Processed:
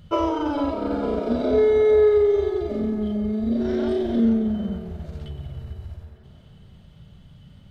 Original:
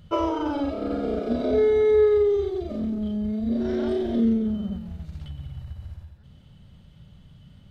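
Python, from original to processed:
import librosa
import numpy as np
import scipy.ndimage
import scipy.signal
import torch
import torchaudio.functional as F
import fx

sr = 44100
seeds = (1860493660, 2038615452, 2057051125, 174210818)

y = fx.echo_wet_bandpass(x, sr, ms=450, feedback_pct=50, hz=1000.0, wet_db=-8)
y = y * 10.0 ** (2.0 / 20.0)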